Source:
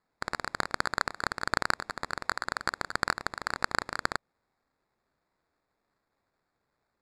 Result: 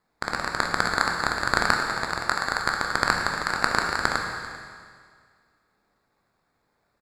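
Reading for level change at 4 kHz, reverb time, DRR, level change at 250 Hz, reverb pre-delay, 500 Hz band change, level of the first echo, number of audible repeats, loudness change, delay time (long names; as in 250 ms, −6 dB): +7.5 dB, 1.9 s, 1.0 dB, +8.0 dB, 14 ms, +7.0 dB, −18.0 dB, 1, +7.5 dB, 393 ms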